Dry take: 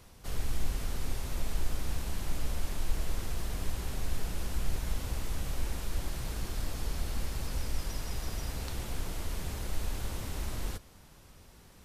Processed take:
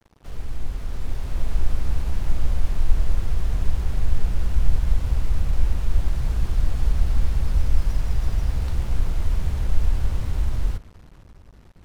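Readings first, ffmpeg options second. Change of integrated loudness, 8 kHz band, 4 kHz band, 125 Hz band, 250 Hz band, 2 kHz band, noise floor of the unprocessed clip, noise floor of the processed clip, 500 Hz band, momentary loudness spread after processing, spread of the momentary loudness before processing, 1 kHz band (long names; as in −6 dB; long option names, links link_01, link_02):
+11.0 dB, −4.0 dB, −0.5 dB, +12.5 dB, +5.5 dB, +2.0 dB, −56 dBFS, −48 dBFS, +3.5 dB, 7 LU, 3 LU, +3.5 dB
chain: -af "lowpass=frequency=1700:poles=1,asubboost=boost=2.5:cutoff=160,acrusher=bits=7:mix=0:aa=0.5,dynaudnorm=framelen=180:gausssize=13:maxgain=6dB"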